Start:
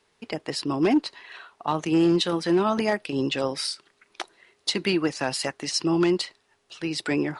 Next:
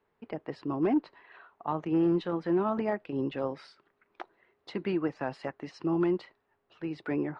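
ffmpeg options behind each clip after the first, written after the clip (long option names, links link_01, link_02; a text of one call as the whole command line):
ffmpeg -i in.wav -af "lowpass=1500,volume=-5.5dB" out.wav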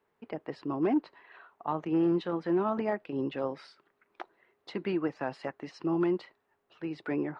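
ffmpeg -i in.wav -af "lowshelf=frequency=92:gain=-9" out.wav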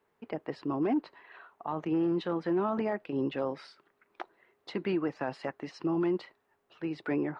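ffmpeg -i in.wav -af "alimiter=limit=-23.5dB:level=0:latency=1:release=12,volume=1.5dB" out.wav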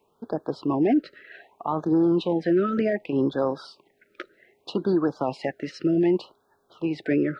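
ffmpeg -i in.wav -af "afftfilt=real='re*(1-between(b*sr/1024,860*pow(2500/860,0.5+0.5*sin(2*PI*0.65*pts/sr))/1.41,860*pow(2500/860,0.5+0.5*sin(2*PI*0.65*pts/sr))*1.41))':imag='im*(1-between(b*sr/1024,860*pow(2500/860,0.5+0.5*sin(2*PI*0.65*pts/sr))/1.41,860*pow(2500/860,0.5+0.5*sin(2*PI*0.65*pts/sr))*1.41))':win_size=1024:overlap=0.75,volume=8dB" out.wav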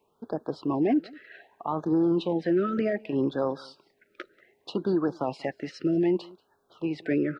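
ffmpeg -i in.wav -af "aecho=1:1:186:0.0631,volume=-3dB" out.wav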